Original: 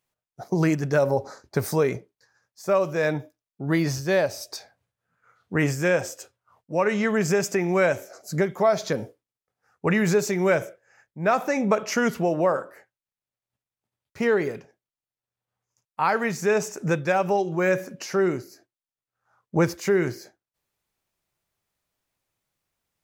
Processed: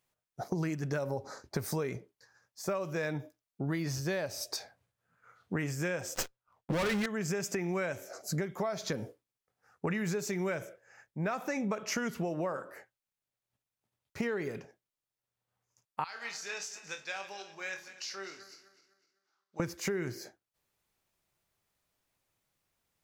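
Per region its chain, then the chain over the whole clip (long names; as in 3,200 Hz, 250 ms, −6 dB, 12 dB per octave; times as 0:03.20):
0:06.15–0:07.06: parametric band 250 Hz −3 dB 0.36 octaves + leveller curve on the samples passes 5 + windowed peak hold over 3 samples
0:16.04–0:19.60: feedback delay that plays each chunk backwards 126 ms, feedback 59%, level −12.5 dB + resonant band-pass 4,100 Hz, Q 2.1 + flutter between parallel walls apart 4.4 metres, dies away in 0.21 s
whole clip: dynamic equaliser 610 Hz, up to −4 dB, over −31 dBFS, Q 0.83; downward compressor 6 to 1, threshold −31 dBFS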